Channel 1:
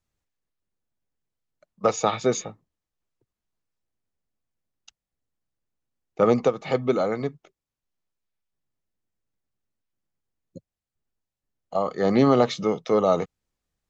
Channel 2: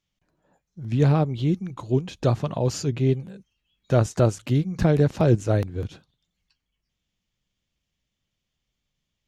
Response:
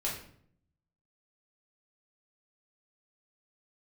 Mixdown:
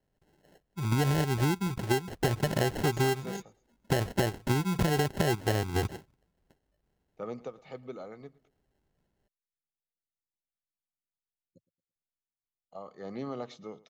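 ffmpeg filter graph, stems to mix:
-filter_complex "[0:a]adelay=1000,volume=-19.5dB,asplit=2[a][b];[b]volume=-21.5dB[c];[1:a]equalizer=f=390:t=o:w=0.32:g=10,acompressor=threshold=-22dB:ratio=6,acrusher=samples=37:mix=1:aa=0.000001,volume=2.5dB[d];[c]aecho=0:1:112|224|336|448|560:1|0.34|0.116|0.0393|0.0134[e];[a][d][e]amix=inputs=3:normalize=0,acompressor=threshold=-23dB:ratio=6"

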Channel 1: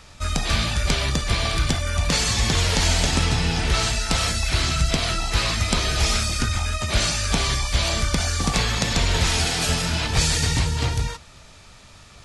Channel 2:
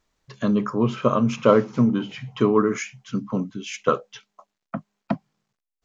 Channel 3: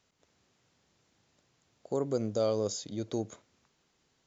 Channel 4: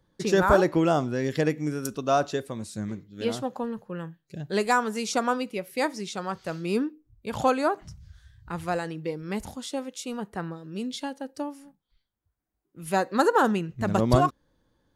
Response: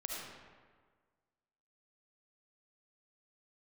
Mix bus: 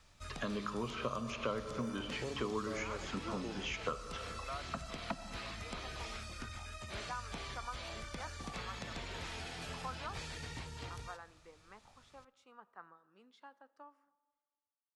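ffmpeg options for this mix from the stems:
-filter_complex "[0:a]volume=-19.5dB,asplit=2[a][b];[b]volume=-22dB[c];[1:a]equalizer=f=230:t=o:w=2.8:g=-10,volume=-0.5dB,asplit=2[d][e];[e]volume=-9.5dB[f];[2:a]adelay=300,volume=-6dB[g];[3:a]bandpass=f=1.2k:t=q:w=3:csg=0,adelay=2400,volume=-11.5dB,asplit=2[h][i];[i]volume=-19.5dB[j];[4:a]atrim=start_sample=2205[k];[c][f][j]amix=inputs=3:normalize=0[l];[l][k]afir=irnorm=-1:irlink=0[m];[a][d][g][h][m]amix=inputs=5:normalize=0,acrossover=split=230|3400[n][o][p];[n]acompressor=threshold=-47dB:ratio=4[q];[o]acompressor=threshold=-39dB:ratio=4[r];[p]acompressor=threshold=-56dB:ratio=4[s];[q][r][s]amix=inputs=3:normalize=0"

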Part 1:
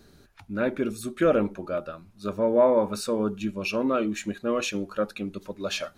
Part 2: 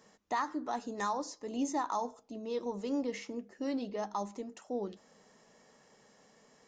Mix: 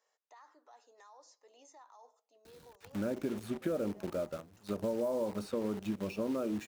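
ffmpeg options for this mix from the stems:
-filter_complex "[0:a]acompressor=threshold=-27dB:ratio=2,acrusher=bits=7:dc=4:mix=0:aa=0.000001,adelay=2450,volume=-2dB[a];[1:a]highpass=f=490:w=0.5412,highpass=f=490:w=1.3066,alimiter=level_in=9.5dB:limit=-24dB:level=0:latency=1:release=48,volume=-9.5dB,volume=-15.5dB[b];[a][b]amix=inputs=2:normalize=0,highpass=59,acrossover=split=820|3600[c][d][e];[c]acompressor=threshold=-31dB:ratio=4[f];[d]acompressor=threshold=-53dB:ratio=4[g];[e]acompressor=threshold=-57dB:ratio=4[h];[f][g][h]amix=inputs=3:normalize=0"

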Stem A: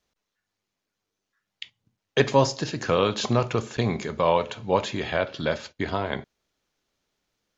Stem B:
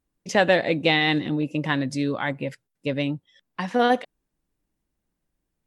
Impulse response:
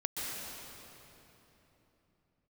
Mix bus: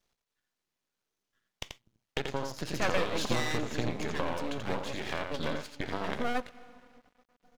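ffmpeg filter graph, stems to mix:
-filter_complex "[0:a]acompressor=threshold=-30dB:ratio=10,volume=2dB,asplit=2[a][b];[b]volume=-5.5dB[c];[1:a]aeval=exprs='max(val(0),0)':c=same,adelay=2450,volume=-7dB,asplit=2[d][e];[e]volume=-17.5dB[f];[2:a]atrim=start_sample=2205[g];[f][g]afir=irnorm=-1:irlink=0[h];[c]aecho=0:1:85:1[i];[a][d][h][i]amix=inputs=4:normalize=0,aeval=exprs='max(val(0),0)':c=same"

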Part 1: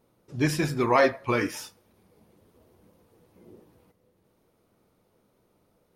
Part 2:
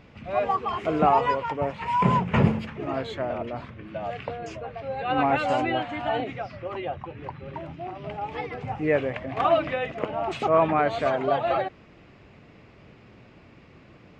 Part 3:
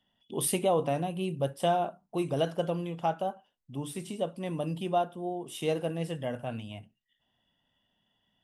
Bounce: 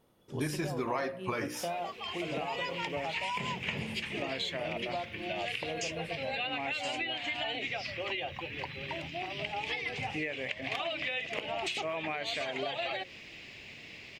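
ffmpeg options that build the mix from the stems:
-filter_complex "[0:a]volume=-0.5dB,asplit=2[a][b];[1:a]equalizer=f=3.4k:w=0.36:g=-4,aexciter=amount=13.4:drive=3.9:freq=2k,adelay=1350,volume=-2dB[c];[2:a]volume=-4.5dB[d];[b]apad=whole_len=685460[e];[c][e]sidechaincompress=threshold=-39dB:ratio=6:attack=44:release=1300[f];[f][d]amix=inputs=2:normalize=0,bass=f=250:g=-4,treble=f=4k:g=-6,acompressor=threshold=-29dB:ratio=6,volume=0dB[g];[a][g]amix=inputs=2:normalize=0,bandreject=f=60:t=h:w=6,bandreject=f=120:t=h:w=6,bandreject=f=180:t=h:w=6,bandreject=f=240:t=h:w=6,bandreject=f=300:t=h:w=6,bandreject=f=360:t=h:w=6,bandreject=f=420:t=h:w=6,bandreject=f=480:t=h:w=6,bandreject=f=540:t=h:w=6,acompressor=threshold=-31dB:ratio=5"

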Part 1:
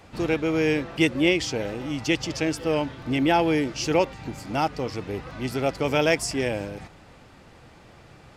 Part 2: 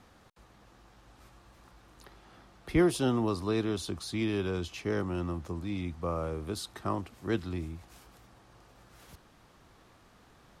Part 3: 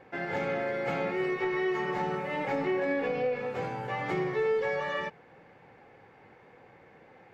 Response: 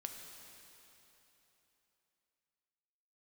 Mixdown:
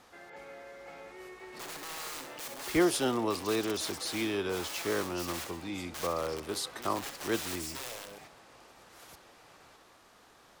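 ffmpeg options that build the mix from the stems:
-filter_complex "[0:a]lowshelf=f=69:g=-9.5,aeval=exprs='(mod(14.1*val(0)+1,2)-1)/14.1':c=same,adelay=1400,volume=-7.5dB,asplit=2[a][b];[b]volume=-13.5dB[c];[1:a]volume=2dB[d];[2:a]volume=-16dB[e];[a][e]amix=inputs=2:normalize=0,alimiter=level_in=12.5dB:limit=-24dB:level=0:latency=1,volume=-12.5dB,volume=0dB[f];[c]aecho=0:1:64|128|192|256|320|384:1|0.43|0.185|0.0795|0.0342|0.0147[g];[d][f][g]amix=inputs=3:normalize=0,bass=f=250:g=-13,treble=f=4k:g=3"

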